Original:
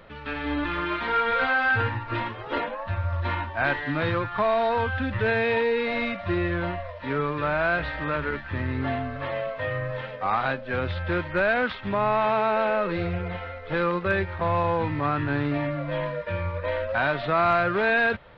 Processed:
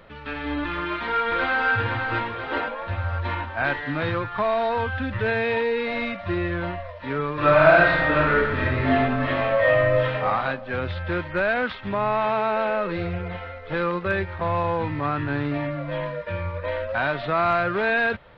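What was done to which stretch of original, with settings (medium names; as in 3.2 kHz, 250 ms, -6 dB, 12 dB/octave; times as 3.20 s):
0.81–1.68 s: echo throw 500 ms, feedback 60%, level -5 dB
7.33–10.24 s: reverb throw, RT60 1 s, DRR -8 dB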